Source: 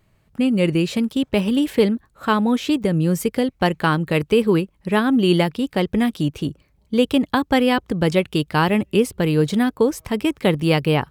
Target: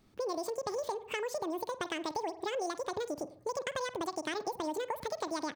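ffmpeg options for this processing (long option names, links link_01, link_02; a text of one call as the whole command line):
ffmpeg -i in.wav -filter_complex "[0:a]asplit=2[link_01][link_02];[link_02]adelay=97,lowpass=frequency=1300:poles=1,volume=-16.5dB,asplit=2[link_03][link_04];[link_04]adelay=97,lowpass=frequency=1300:poles=1,volume=0.43,asplit=2[link_05][link_06];[link_06]adelay=97,lowpass=frequency=1300:poles=1,volume=0.43,asplit=2[link_07][link_08];[link_08]adelay=97,lowpass=frequency=1300:poles=1,volume=0.43[link_09];[link_01][link_03][link_05][link_07][link_09]amix=inputs=5:normalize=0,acompressor=threshold=-30dB:ratio=4,asetrate=88200,aresample=44100,volume=-5dB" out.wav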